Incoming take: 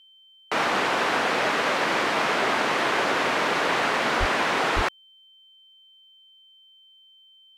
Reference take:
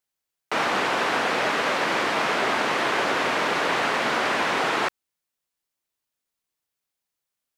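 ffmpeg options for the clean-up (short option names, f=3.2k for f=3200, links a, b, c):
-filter_complex "[0:a]bandreject=f=3.1k:w=30,asplit=3[a][b][c];[a]afade=t=out:st=4.19:d=0.02[d];[b]highpass=f=140:w=0.5412,highpass=f=140:w=1.3066,afade=t=in:st=4.19:d=0.02,afade=t=out:st=4.31:d=0.02[e];[c]afade=t=in:st=4.31:d=0.02[f];[d][e][f]amix=inputs=3:normalize=0,asplit=3[g][h][i];[g]afade=t=out:st=4.75:d=0.02[j];[h]highpass=f=140:w=0.5412,highpass=f=140:w=1.3066,afade=t=in:st=4.75:d=0.02,afade=t=out:st=4.87:d=0.02[k];[i]afade=t=in:st=4.87:d=0.02[l];[j][k][l]amix=inputs=3:normalize=0"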